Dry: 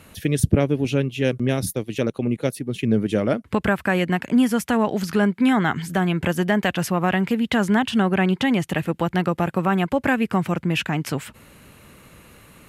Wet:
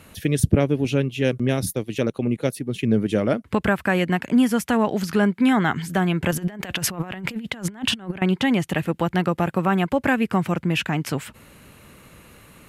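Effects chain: 6.31–8.22 s: compressor with a negative ratio -27 dBFS, ratio -0.5

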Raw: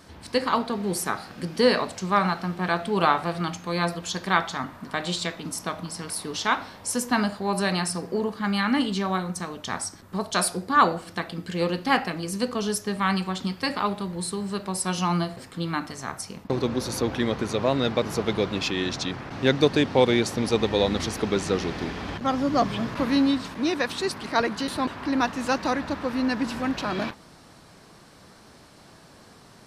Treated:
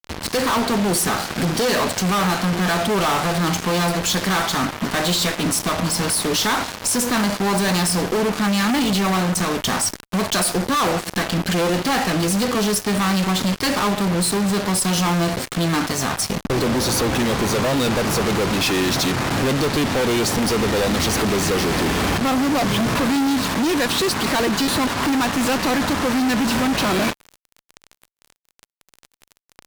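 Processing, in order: in parallel at +2.5 dB: compression, threshold -30 dBFS, peak gain reduction 16 dB; on the sum: fuzz box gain 38 dB, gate -34 dBFS; trim -4 dB

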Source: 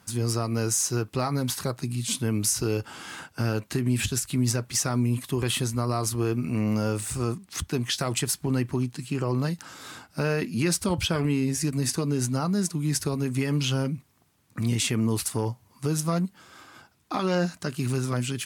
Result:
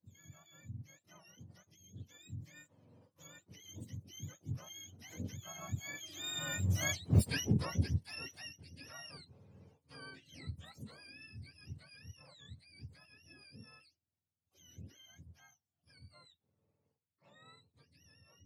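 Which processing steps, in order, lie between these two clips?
spectrum inverted on a logarithmic axis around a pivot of 860 Hz; Doppler pass-by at 7.09 s, 19 m/s, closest 2.9 m; harmony voices +12 st -12 dB; trim +1 dB

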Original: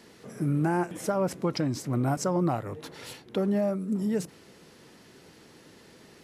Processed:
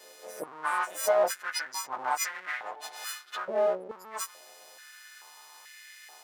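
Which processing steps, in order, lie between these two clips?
partials quantised in pitch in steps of 3 st; 1.69–2.96 s: Bessel low-pass 8.3 kHz; spectral gate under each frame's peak -20 dB strong; half-wave rectifier; step-sequenced high-pass 2.3 Hz 530–1900 Hz

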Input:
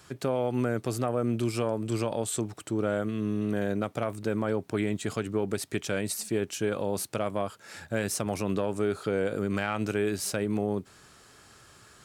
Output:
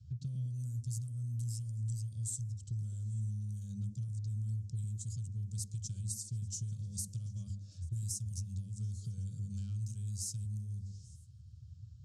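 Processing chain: high-pass 75 Hz 24 dB/octave; level-controlled noise filter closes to 2.7 kHz, open at -23 dBFS; elliptic band-stop 100–6300 Hz, stop band 50 dB; hum notches 50/100 Hz; level-controlled noise filter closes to 2.5 kHz, open at -37 dBFS; bass shelf 220 Hz +7.5 dB; compression 6:1, threshold -48 dBFS, peak gain reduction 16.5 dB; repeats whose band climbs or falls 105 ms, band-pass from 220 Hz, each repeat 0.7 oct, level -1.5 dB; on a send at -23 dB: reverberation RT60 0.55 s, pre-delay 45 ms; on the sum: trim +11 dB

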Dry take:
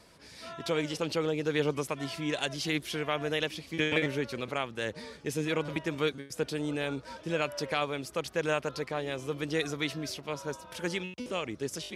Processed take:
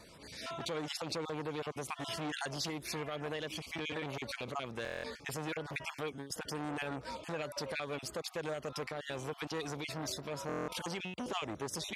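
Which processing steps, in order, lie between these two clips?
random holes in the spectrogram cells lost 24%; compression 5:1, threshold -33 dBFS, peak gain reduction 9 dB; peak limiter -28 dBFS, peak gain reduction 6.5 dB; buffer glitch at 4.83/10.47 s, samples 1024, times 8; transformer saturation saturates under 900 Hz; trim +3 dB

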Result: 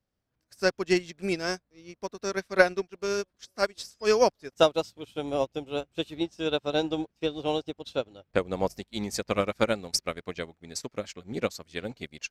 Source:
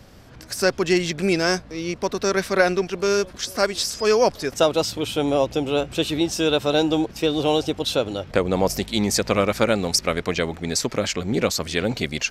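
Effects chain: 6.14–8.38 s: peaking EQ 13 kHz -8.5 dB 1.1 oct; upward expansion 2.5:1, over -37 dBFS

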